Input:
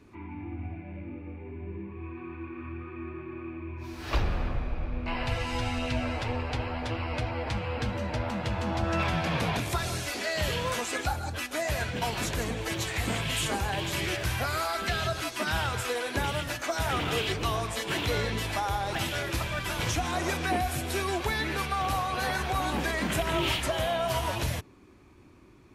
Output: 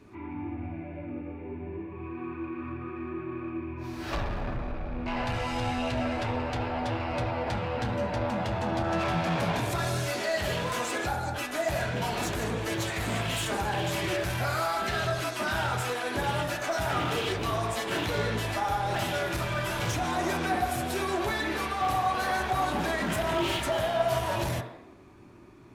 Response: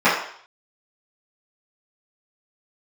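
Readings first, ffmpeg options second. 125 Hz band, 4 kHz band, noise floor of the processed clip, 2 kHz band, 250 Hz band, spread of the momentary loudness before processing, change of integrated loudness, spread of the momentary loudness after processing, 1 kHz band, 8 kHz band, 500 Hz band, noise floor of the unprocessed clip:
-0.5 dB, -2.0 dB, -41 dBFS, 0.0 dB, +1.5 dB, 12 LU, +0.5 dB, 9 LU, +2.0 dB, -2.0 dB, +2.5 dB, -45 dBFS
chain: -filter_complex "[0:a]asoftclip=type=tanh:threshold=-27.5dB,asplit=2[a][b];[1:a]atrim=start_sample=2205,asetrate=31311,aresample=44100[c];[b][c]afir=irnorm=-1:irlink=0,volume=-25.5dB[d];[a][d]amix=inputs=2:normalize=0"

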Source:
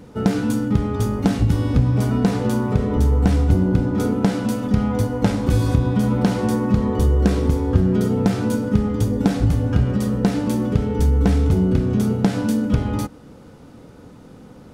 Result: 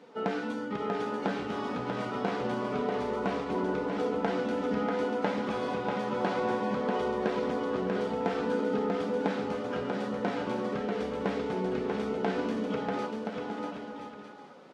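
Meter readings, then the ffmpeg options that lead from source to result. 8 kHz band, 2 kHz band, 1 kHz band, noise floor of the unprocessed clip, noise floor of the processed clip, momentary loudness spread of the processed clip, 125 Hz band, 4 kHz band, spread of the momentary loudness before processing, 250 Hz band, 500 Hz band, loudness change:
under -15 dB, -3.0 dB, -2.5 dB, -43 dBFS, -45 dBFS, 5 LU, -24.0 dB, -7.0 dB, 4 LU, -13.5 dB, -4.5 dB, -12.0 dB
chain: -filter_complex "[0:a]flanger=delay=4.4:depth=1:regen=-46:speed=0.24:shape=triangular,acrossover=split=3100[a][b];[b]acompressor=threshold=-47dB:ratio=4:attack=1:release=60[c];[a][c]amix=inputs=2:normalize=0,highpass=470,lowpass=4.1k,aecho=1:1:640|1024|1254|1393|1476:0.631|0.398|0.251|0.158|0.1" -ar 48000 -c:a libvorbis -b:a 48k

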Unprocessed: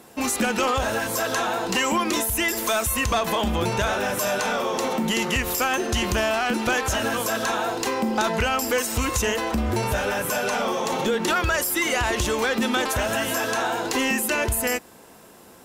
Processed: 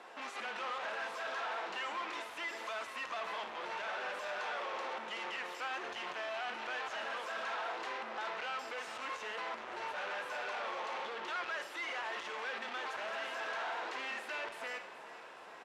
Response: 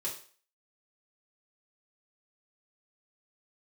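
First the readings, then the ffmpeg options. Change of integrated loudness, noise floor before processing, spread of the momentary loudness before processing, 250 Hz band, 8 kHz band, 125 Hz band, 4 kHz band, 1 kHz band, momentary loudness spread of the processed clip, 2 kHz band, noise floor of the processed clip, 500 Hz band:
-16.5 dB, -48 dBFS, 3 LU, -29.5 dB, -29.0 dB, under -35 dB, -16.5 dB, -13.5 dB, 3 LU, -13.5 dB, -51 dBFS, -18.5 dB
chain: -filter_complex "[0:a]alimiter=limit=-22.5dB:level=0:latency=1,asoftclip=type=hard:threshold=-36.5dB,highpass=740,lowpass=2.7k,asplit=7[a][b][c][d][e][f][g];[b]adelay=421,afreqshift=-38,volume=-15dB[h];[c]adelay=842,afreqshift=-76,volume=-19.4dB[i];[d]adelay=1263,afreqshift=-114,volume=-23.9dB[j];[e]adelay=1684,afreqshift=-152,volume=-28.3dB[k];[f]adelay=2105,afreqshift=-190,volume=-32.7dB[l];[g]adelay=2526,afreqshift=-228,volume=-37.2dB[m];[a][h][i][j][k][l][m]amix=inputs=7:normalize=0,asplit=2[n][o];[1:a]atrim=start_sample=2205,adelay=50[p];[o][p]afir=irnorm=-1:irlink=0,volume=-12.5dB[q];[n][q]amix=inputs=2:normalize=0,volume=1.5dB"

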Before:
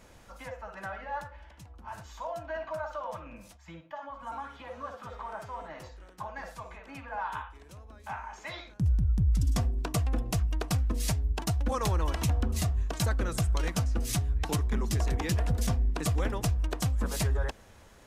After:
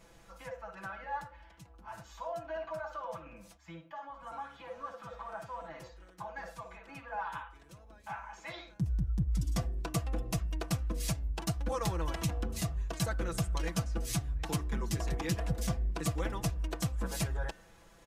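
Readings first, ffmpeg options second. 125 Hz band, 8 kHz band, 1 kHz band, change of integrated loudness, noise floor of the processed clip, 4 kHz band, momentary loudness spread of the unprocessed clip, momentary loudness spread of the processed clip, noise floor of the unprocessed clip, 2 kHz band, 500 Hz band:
-6.0 dB, -3.5 dB, -3.5 dB, -5.5 dB, -59 dBFS, -3.5 dB, 16 LU, 15 LU, -55 dBFS, -3.5 dB, -3.0 dB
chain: -af "aecho=1:1:6:0.65,bandreject=f=301.9:t=h:w=4,bandreject=f=603.8:t=h:w=4,bandreject=f=905.7:t=h:w=4,bandreject=f=1.2076k:t=h:w=4,bandreject=f=1.5095k:t=h:w=4,bandreject=f=1.8114k:t=h:w=4,bandreject=f=2.1133k:t=h:w=4,bandreject=f=2.4152k:t=h:w=4,bandreject=f=2.7171k:t=h:w=4,volume=-5dB"

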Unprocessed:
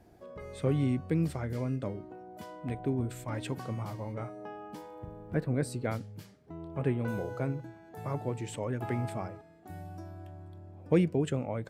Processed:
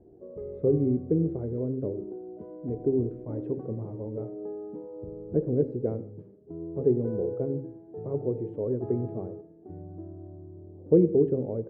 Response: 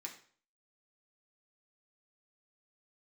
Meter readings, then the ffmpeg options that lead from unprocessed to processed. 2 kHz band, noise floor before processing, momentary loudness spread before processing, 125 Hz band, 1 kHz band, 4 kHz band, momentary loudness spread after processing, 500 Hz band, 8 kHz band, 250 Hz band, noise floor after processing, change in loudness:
under -20 dB, -56 dBFS, 18 LU, +0.5 dB, -9.0 dB, under -30 dB, 20 LU, +8.5 dB, under -30 dB, +4.5 dB, -52 dBFS, +5.0 dB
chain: -filter_complex "[0:a]lowpass=f=420:t=q:w=3.9,bandreject=f=67.19:t=h:w=4,bandreject=f=134.38:t=h:w=4,bandreject=f=201.57:t=h:w=4,bandreject=f=268.76:t=h:w=4,bandreject=f=335.95:t=h:w=4,bandreject=f=403.14:t=h:w=4,bandreject=f=470.33:t=h:w=4,bandreject=f=537.52:t=h:w=4,bandreject=f=604.71:t=h:w=4,asplit=2[a][b];[1:a]atrim=start_sample=2205,adelay=81[c];[b][c]afir=irnorm=-1:irlink=0,volume=-11.5dB[d];[a][d]amix=inputs=2:normalize=0"

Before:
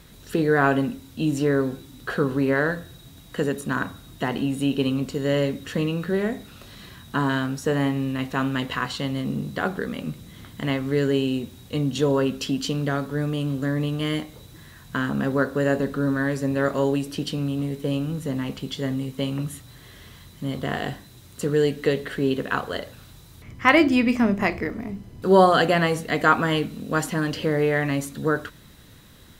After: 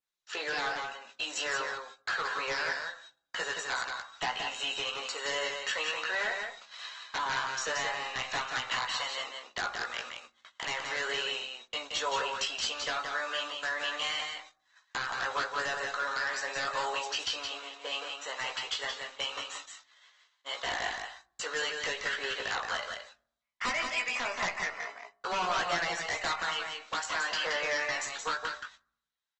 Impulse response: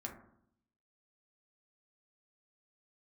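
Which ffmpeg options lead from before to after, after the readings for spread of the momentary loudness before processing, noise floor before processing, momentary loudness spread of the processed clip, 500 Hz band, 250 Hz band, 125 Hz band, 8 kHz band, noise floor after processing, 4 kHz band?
12 LU, -48 dBFS, 10 LU, -15.5 dB, -28.5 dB, -29.5 dB, +1.0 dB, -78 dBFS, +1.0 dB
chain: -filter_complex "[0:a]highpass=f=800:w=0.5412,highpass=f=800:w=1.3066,agate=range=-43dB:threshold=-46dB:ratio=16:detection=peak,adynamicequalizer=threshold=0.00891:dfrequency=3800:dqfactor=1.1:tfrequency=3800:tqfactor=1.1:attack=5:release=100:ratio=0.375:range=2:mode=cutabove:tftype=bell,acompressor=threshold=-32dB:ratio=4,aeval=exprs='0.0316*(abs(mod(val(0)/0.0316+3,4)-2)-1)':c=same,asplit=2[a][b];[b]adelay=17,volume=-5dB[c];[a][c]amix=inputs=2:normalize=0,aecho=1:1:174:0.562,asplit=2[d][e];[1:a]atrim=start_sample=2205,lowshelf=f=110:g=11,adelay=40[f];[e][f]afir=irnorm=-1:irlink=0,volume=-18.5dB[g];[d][g]amix=inputs=2:normalize=0,aresample=16000,aresample=44100,volume=4dB" -ar 48000 -c:a libopus -b:a 20k

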